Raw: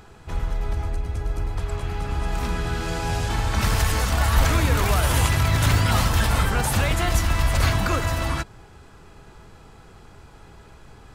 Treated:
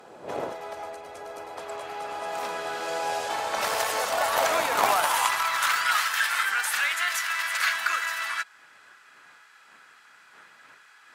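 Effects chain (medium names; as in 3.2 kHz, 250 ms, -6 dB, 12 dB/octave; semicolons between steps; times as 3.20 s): wind noise 160 Hz -30 dBFS; Chebyshev shaper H 3 -17 dB, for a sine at -4 dBFS; high-pass sweep 590 Hz -> 1.6 kHz, 4.37–6.11 s; trim +2 dB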